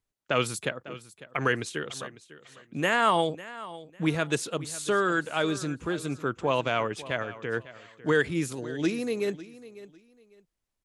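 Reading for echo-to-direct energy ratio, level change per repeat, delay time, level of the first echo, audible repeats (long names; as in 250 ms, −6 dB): −17.0 dB, −12.5 dB, 550 ms, −17.0 dB, 2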